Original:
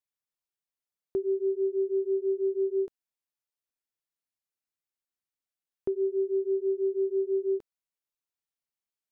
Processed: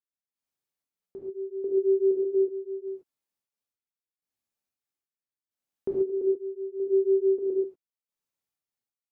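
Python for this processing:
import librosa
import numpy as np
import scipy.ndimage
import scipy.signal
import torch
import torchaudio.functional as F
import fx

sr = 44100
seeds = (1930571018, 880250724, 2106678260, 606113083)

y = fx.peak_eq(x, sr, hz=250.0, db=4.5, octaves=2.9)
y = fx.step_gate(y, sr, bpm=128, pattern='...xxxx.x..', floor_db=-12.0, edge_ms=4.5)
y = fx.rev_gated(y, sr, seeds[0], gate_ms=160, shape='flat', drr_db=-3.5)
y = F.gain(torch.from_numpy(y), -3.5).numpy()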